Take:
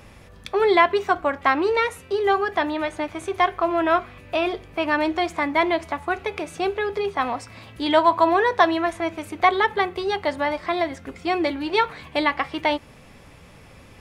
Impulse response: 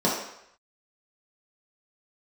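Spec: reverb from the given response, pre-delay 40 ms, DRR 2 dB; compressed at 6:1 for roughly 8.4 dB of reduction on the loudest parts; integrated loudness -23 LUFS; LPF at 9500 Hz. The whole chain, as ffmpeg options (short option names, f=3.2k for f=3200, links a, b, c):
-filter_complex "[0:a]lowpass=9.5k,acompressor=threshold=-20dB:ratio=6,asplit=2[a][b];[1:a]atrim=start_sample=2205,adelay=40[c];[b][c]afir=irnorm=-1:irlink=0,volume=-17dB[d];[a][d]amix=inputs=2:normalize=0,volume=-0.5dB"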